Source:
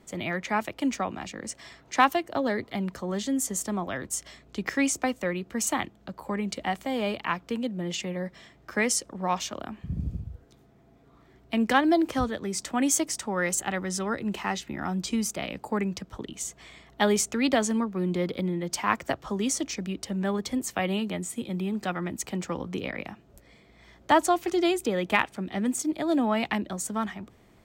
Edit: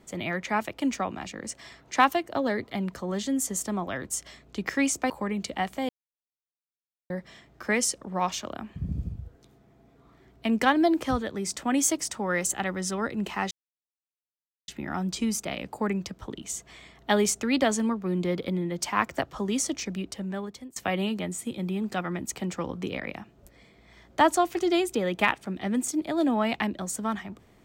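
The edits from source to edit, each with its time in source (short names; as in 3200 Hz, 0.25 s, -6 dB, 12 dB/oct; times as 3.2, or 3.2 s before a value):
5.1–6.18 cut
6.97–8.18 mute
14.59 insert silence 1.17 s
19.88–20.67 fade out linear, to -23 dB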